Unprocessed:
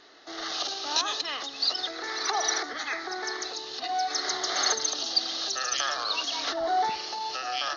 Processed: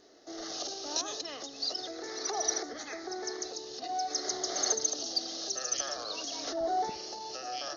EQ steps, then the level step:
flat-topped bell 1,900 Hz −12.5 dB 2.6 octaves
0.0 dB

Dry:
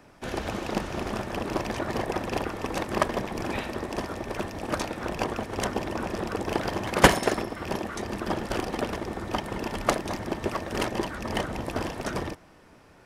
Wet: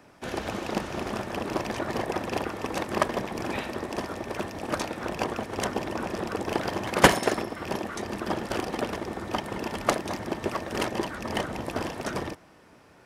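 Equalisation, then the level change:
high-pass filter 96 Hz 6 dB per octave
0.0 dB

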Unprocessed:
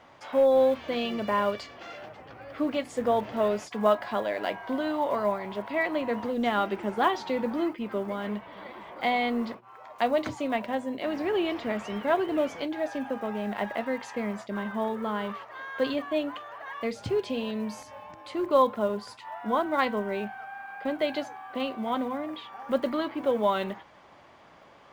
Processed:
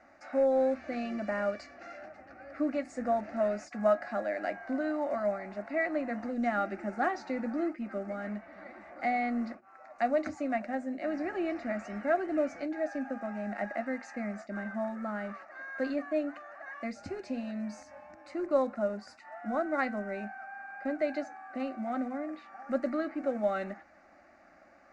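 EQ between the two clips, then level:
low-pass filter 7,300 Hz 24 dB per octave
phaser with its sweep stopped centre 660 Hz, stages 8
−2.0 dB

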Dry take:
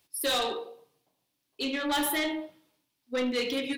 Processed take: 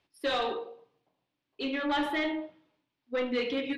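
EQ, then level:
low-pass filter 2,800 Hz 12 dB per octave
mains-hum notches 50/100/150/200/250 Hz
0.0 dB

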